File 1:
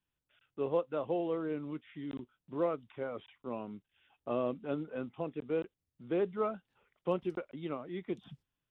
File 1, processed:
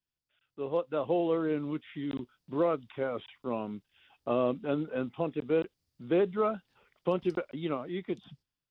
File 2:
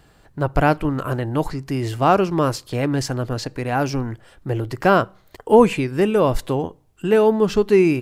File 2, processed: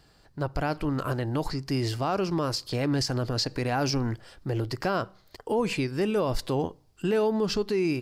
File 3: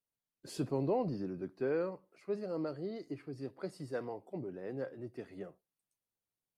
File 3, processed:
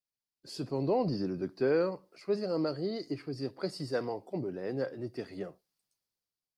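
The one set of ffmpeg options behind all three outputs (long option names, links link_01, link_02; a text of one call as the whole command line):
ffmpeg -i in.wav -af "equalizer=frequency=4800:width=2.5:gain=11,dynaudnorm=framelen=180:gausssize=9:maxgain=13dB,alimiter=limit=-11dB:level=0:latency=1:release=69,volume=-7dB" out.wav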